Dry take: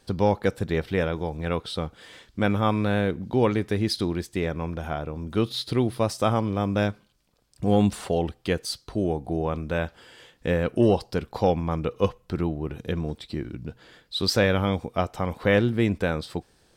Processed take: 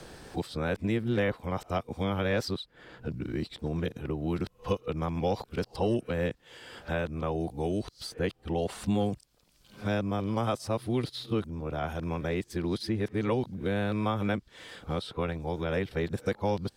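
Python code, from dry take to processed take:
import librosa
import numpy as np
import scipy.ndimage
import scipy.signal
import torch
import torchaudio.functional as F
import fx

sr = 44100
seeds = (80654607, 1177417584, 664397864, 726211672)

y = np.flip(x).copy()
y = fx.band_squash(y, sr, depth_pct=70)
y = y * 10.0 ** (-6.0 / 20.0)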